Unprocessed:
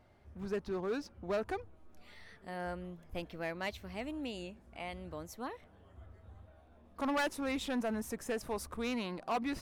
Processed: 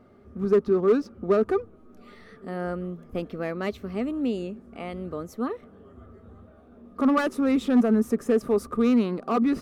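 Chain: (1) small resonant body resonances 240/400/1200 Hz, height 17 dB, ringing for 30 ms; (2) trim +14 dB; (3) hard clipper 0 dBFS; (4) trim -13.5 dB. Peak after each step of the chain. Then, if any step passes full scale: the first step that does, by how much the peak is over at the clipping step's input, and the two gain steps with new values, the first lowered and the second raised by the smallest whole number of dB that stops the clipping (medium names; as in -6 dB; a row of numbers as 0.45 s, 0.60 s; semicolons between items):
-10.5 dBFS, +3.5 dBFS, 0.0 dBFS, -13.5 dBFS; step 2, 3.5 dB; step 2 +10 dB, step 4 -9.5 dB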